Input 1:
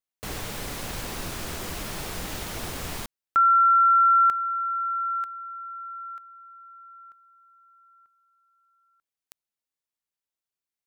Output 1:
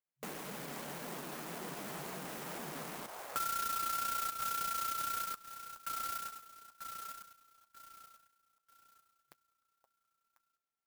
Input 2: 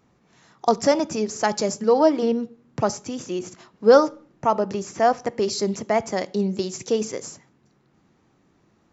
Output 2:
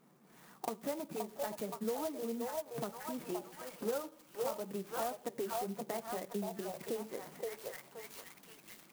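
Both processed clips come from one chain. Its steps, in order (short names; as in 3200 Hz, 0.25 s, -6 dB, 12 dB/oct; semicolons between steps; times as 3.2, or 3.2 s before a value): delay with a stepping band-pass 0.522 s, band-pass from 730 Hz, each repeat 0.7 oct, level -3 dB; compressor 5:1, threshold -35 dBFS; flange 1.9 Hz, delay 4 ms, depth 5.8 ms, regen -37%; FFT band-pass 130–4900 Hz; clock jitter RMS 0.07 ms; gain +1 dB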